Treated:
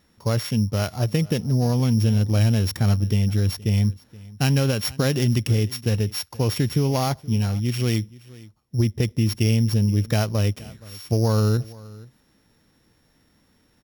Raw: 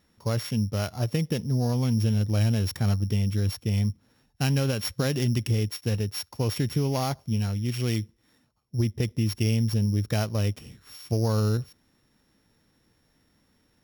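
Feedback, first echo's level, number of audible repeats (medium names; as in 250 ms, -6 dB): no regular repeats, -21.5 dB, 1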